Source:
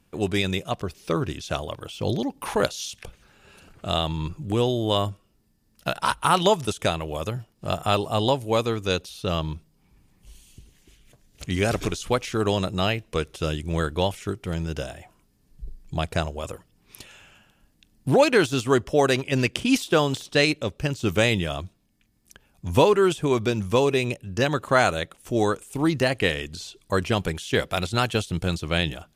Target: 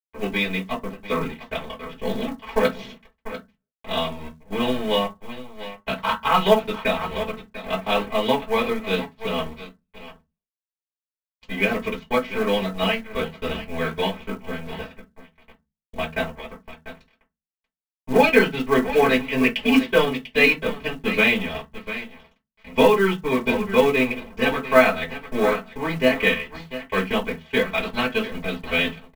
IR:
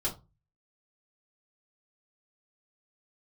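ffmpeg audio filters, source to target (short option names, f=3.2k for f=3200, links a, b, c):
-filter_complex "[0:a]aecho=1:1:694|1388|2082:0.316|0.0759|0.0182,acrossover=split=160|1400|2000[a][b][c][d];[a]acompressor=threshold=-39dB:ratio=6[e];[e][b][c][d]amix=inputs=4:normalize=0,aeval=exprs='sgn(val(0))*max(abs(val(0))-0.0282,0)':c=same,lowpass=f=2.7k:t=q:w=2.7,aecho=1:1:4.5:0.85[f];[1:a]atrim=start_sample=2205,asetrate=61740,aresample=44100[g];[f][g]afir=irnorm=-1:irlink=0,acrusher=bits=6:mode=log:mix=0:aa=0.000001,volume=-3.5dB"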